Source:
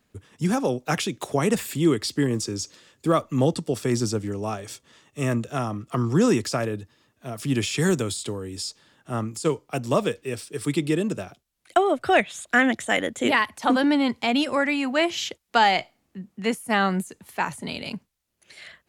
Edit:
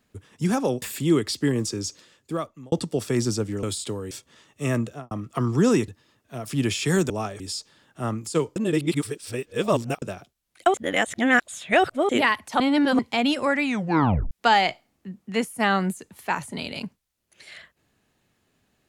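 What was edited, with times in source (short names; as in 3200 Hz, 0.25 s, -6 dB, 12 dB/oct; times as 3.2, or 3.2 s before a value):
0.82–1.57 cut
2.63–3.47 fade out
4.38–4.68 swap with 8.02–8.5
5.41–5.68 studio fade out
6.45–6.8 cut
9.66–11.12 reverse
11.84–13.19 reverse
13.7–14.09 reverse
14.74 tape stop 0.67 s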